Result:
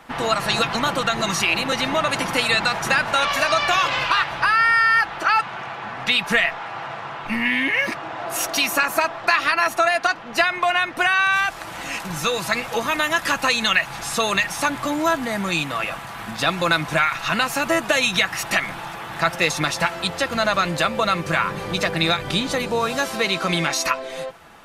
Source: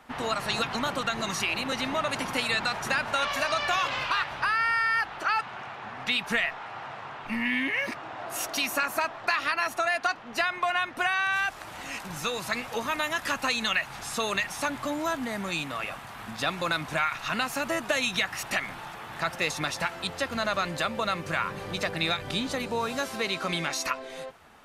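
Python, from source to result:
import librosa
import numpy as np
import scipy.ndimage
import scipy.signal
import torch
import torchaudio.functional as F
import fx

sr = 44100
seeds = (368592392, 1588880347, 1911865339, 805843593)

y = x + 0.32 * np.pad(x, (int(6.0 * sr / 1000.0), 0))[:len(x)]
y = F.gain(torch.from_numpy(y), 7.5).numpy()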